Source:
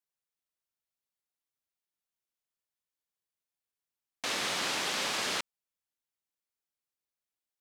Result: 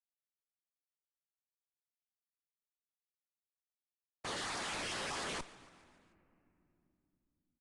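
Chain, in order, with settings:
time-frequency cells dropped at random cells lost 35%
downward expander −31 dBFS
low-pass that shuts in the quiet parts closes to 800 Hz, open at −37 dBFS
brickwall limiter −32 dBFS, peak gain reduction 8.5 dB
comparator with hysteresis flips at −47 dBFS
echo with shifted repeats 144 ms, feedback 61%, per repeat +120 Hz, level −21 dB
on a send at −17.5 dB: convolution reverb RT60 3.2 s, pre-delay 3 ms
on the sum: level +9.5 dB
AAC 48 kbit/s 22,050 Hz

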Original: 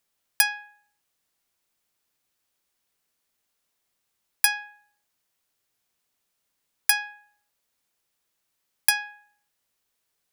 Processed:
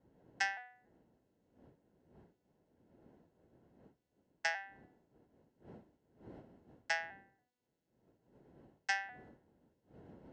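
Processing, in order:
vocoder with an arpeggio as carrier minor triad, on E3, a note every 284 ms
wind on the microphone 350 Hz −53 dBFS
notch comb filter 1,200 Hz
level −9 dB

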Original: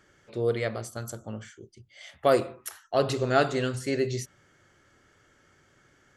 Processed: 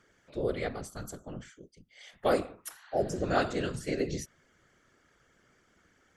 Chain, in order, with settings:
healed spectral selection 0:02.80–0:03.21, 750–4,800 Hz before
random phases in short frames
level −4.5 dB

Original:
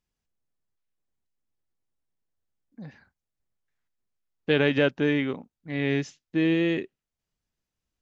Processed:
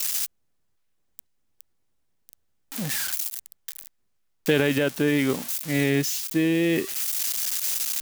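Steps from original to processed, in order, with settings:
spike at every zero crossing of −25.5 dBFS
brickwall limiter −15.5 dBFS, peak gain reduction 6.5 dB
speech leveller within 4 dB 0.5 s
level +6 dB

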